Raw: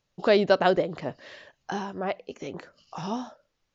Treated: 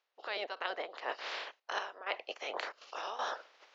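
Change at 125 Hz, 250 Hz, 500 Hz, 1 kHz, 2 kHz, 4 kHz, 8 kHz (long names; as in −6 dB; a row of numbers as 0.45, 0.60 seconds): below −40 dB, −26.5 dB, −17.0 dB, −8.0 dB, −5.5 dB, −4.5 dB, can't be measured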